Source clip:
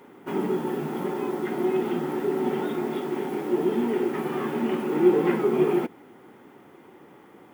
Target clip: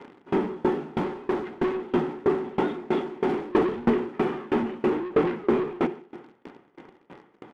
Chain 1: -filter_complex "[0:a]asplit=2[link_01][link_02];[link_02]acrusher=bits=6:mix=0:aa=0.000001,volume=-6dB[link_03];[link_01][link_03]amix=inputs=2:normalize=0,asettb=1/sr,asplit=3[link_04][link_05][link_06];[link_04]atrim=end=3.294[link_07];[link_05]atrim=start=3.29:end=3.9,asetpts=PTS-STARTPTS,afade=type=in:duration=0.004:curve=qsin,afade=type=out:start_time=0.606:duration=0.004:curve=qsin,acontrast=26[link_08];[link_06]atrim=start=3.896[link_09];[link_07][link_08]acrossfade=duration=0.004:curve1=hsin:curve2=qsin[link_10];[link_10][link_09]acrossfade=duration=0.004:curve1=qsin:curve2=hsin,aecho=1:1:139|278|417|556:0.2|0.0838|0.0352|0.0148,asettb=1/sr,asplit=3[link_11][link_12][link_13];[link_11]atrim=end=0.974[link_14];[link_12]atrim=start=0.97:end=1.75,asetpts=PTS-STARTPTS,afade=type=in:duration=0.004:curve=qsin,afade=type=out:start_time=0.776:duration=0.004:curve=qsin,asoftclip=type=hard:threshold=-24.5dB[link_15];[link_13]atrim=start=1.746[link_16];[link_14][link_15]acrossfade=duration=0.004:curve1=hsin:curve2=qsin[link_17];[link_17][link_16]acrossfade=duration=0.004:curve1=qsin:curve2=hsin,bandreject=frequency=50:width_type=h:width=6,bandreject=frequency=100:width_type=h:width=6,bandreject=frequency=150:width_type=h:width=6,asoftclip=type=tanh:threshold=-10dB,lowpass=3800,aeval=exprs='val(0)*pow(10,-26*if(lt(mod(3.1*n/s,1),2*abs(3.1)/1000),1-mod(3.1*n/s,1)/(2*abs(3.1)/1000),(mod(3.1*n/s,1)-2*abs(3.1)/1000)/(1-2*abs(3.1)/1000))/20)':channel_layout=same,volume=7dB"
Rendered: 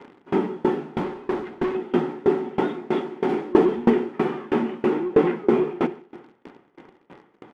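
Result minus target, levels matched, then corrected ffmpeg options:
soft clipping: distortion −10 dB
-filter_complex "[0:a]asplit=2[link_01][link_02];[link_02]acrusher=bits=6:mix=0:aa=0.000001,volume=-6dB[link_03];[link_01][link_03]amix=inputs=2:normalize=0,asettb=1/sr,asplit=3[link_04][link_05][link_06];[link_04]atrim=end=3.294[link_07];[link_05]atrim=start=3.29:end=3.9,asetpts=PTS-STARTPTS,afade=type=in:duration=0.004:curve=qsin,afade=type=out:start_time=0.606:duration=0.004:curve=qsin,acontrast=26[link_08];[link_06]atrim=start=3.896[link_09];[link_07][link_08]acrossfade=duration=0.004:curve1=hsin:curve2=qsin[link_10];[link_10][link_09]acrossfade=duration=0.004:curve1=qsin:curve2=hsin,aecho=1:1:139|278|417|556:0.2|0.0838|0.0352|0.0148,asettb=1/sr,asplit=3[link_11][link_12][link_13];[link_11]atrim=end=0.974[link_14];[link_12]atrim=start=0.97:end=1.75,asetpts=PTS-STARTPTS,afade=type=in:duration=0.004:curve=qsin,afade=type=out:start_time=0.776:duration=0.004:curve=qsin,asoftclip=type=hard:threshold=-24.5dB[link_15];[link_13]atrim=start=1.746[link_16];[link_14][link_15]acrossfade=duration=0.004:curve1=hsin:curve2=qsin[link_17];[link_17][link_16]acrossfade=duration=0.004:curve1=qsin:curve2=hsin,bandreject=frequency=50:width_type=h:width=6,bandreject=frequency=100:width_type=h:width=6,bandreject=frequency=150:width_type=h:width=6,asoftclip=type=tanh:threshold=-20dB,lowpass=3800,aeval=exprs='val(0)*pow(10,-26*if(lt(mod(3.1*n/s,1),2*abs(3.1)/1000),1-mod(3.1*n/s,1)/(2*abs(3.1)/1000),(mod(3.1*n/s,1)-2*abs(3.1)/1000)/(1-2*abs(3.1)/1000))/20)':channel_layout=same,volume=7dB"

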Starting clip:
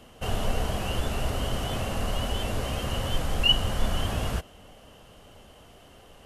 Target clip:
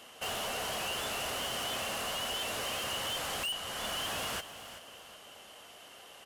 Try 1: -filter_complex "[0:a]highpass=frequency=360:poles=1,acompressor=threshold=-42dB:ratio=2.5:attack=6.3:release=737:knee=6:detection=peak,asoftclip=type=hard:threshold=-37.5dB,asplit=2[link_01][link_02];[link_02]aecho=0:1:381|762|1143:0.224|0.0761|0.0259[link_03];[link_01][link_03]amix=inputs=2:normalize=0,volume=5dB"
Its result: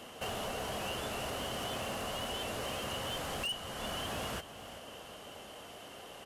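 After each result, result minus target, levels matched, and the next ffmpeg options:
downward compressor: peak gain reduction +6.5 dB; 500 Hz band +5.0 dB
-filter_complex "[0:a]highpass=frequency=360:poles=1,acompressor=threshold=-32dB:ratio=2.5:attack=6.3:release=737:knee=6:detection=peak,asoftclip=type=hard:threshold=-37.5dB,asplit=2[link_01][link_02];[link_02]aecho=0:1:381|762|1143:0.224|0.0761|0.0259[link_03];[link_01][link_03]amix=inputs=2:normalize=0,volume=5dB"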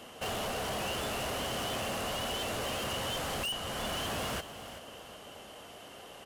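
500 Hz band +4.0 dB
-filter_complex "[0:a]highpass=frequency=1300:poles=1,acompressor=threshold=-32dB:ratio=2.5:attack=6.3:release=737:knee=6:detection=peak,asoftclip=type=hard:threshold=-37.5dB,asplit=2[link_01][link_02];[link_02]aecho=0:1:381|762|1143:0.224|0.0761|0.0259[link_03];[link_01][link_03]amix=inputs=2:normalize=0,volume=5dB"

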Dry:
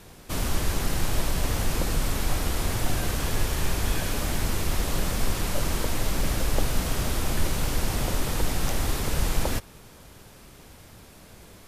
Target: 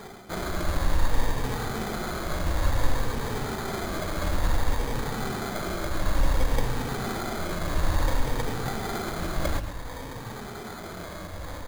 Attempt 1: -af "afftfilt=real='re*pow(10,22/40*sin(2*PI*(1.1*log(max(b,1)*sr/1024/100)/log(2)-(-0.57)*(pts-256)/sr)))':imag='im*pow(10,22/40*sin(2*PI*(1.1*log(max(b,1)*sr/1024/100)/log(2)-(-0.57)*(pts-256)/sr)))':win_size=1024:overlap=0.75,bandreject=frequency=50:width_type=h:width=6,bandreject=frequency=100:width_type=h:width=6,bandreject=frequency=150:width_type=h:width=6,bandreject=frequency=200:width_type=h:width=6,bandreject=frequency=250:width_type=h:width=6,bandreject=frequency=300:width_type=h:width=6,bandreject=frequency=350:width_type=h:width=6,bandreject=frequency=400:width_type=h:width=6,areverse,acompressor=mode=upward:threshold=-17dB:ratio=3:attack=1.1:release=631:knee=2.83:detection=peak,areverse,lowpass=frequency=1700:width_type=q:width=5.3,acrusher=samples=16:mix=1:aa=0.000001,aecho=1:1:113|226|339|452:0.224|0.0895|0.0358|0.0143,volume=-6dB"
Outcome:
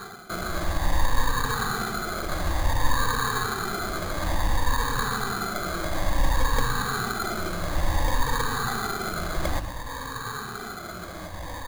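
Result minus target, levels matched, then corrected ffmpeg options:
2,000 Hz band +3.0 dB
-af "afftfilt=real='re*pow(10,22/40*sin(2*PI*(1.1*log(max(b,1)*sr/1024/100)/log(2)-(-0.57)*(pts-256)/sr)))':imag='im*pow(10,22/40*sin(2*PI*(1.1*log(max(b,1)*sr/1024/100)/log(2)-(-0.57)*(pts-256)/sr)))':win_size=1024:overlap=0.75,bandreject=frequency=50:width_type=h:width=6,bandreject=frequency=100:width_type=h:width=6,bandreject=frequency=150:width_type=h:width=6,bandreject=frequency=200:width_type=h:width=6,bandreject=frequency=250:width_type=h:width=6,bandreject=frequency=300:width_type=h:width=6,bandreject=frequency=350:width_type=h:width=6,bandreject=frequency=400:width_type=h:width=6,areverse,acompressor=mode=upward:threshold=-17dB:ratio=3:attack=1.1:release=631:knee=2.83:detection=peak,areverse,acrusher=samples=16:mix=1:aa=0.000001,aecho=1:1:113|226|339|452:0.224|0.0895|0.0358|0.0143,volume=-6dB"

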